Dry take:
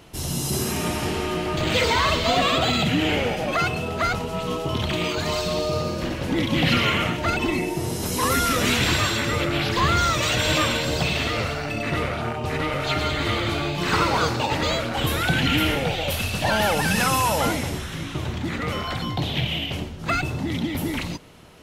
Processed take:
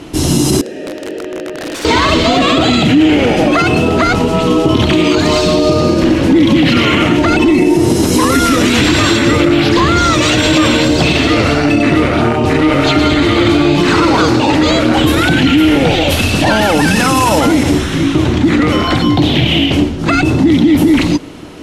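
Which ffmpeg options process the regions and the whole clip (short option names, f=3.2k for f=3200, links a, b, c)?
-filter_complex "[0:a]asettb=1/sr,asplit=3[a][b][c];[a]atrim=end=0.614[d];[b]atrim=start=0.61:end=1.85,asetpts=PTS-STARTPTS,afade=t=in:d=0.004:c=qsin,afade=t=out:st=1.236:d=0.004:c=qsin,asplit=3[e][f][g];[e]bandpass=f=530:t=q:w=8,volume=0dB[h];[f]bandpass=f=1.84k:t=q:w=8,volume=-6dB[i];[g]bandpass=f=2.48k:t=q:w=8,volume=-9dB[j];[h][i][j]amix=inputs=3:normalize=0,equalizer=f=2.4k:w=1.8:g=-9,aeval=exprs='(mod(39.8*val(0)+1,2)-1)/39.8':c=same[k];[c]atrim=start=1.846[l];[d][k]acrossfade=d=0.004:c1=hsin:c2=qsin[m];[m][l]acrossfade=d=0.004:c1=qsin:c2=hsin,lowpass=10k,equalizer=f=300:w=2.4:g=13,alimiter=level_in=14.5dB:limit=-1dB:release=50:level=0:latency=1,volume=-1dB"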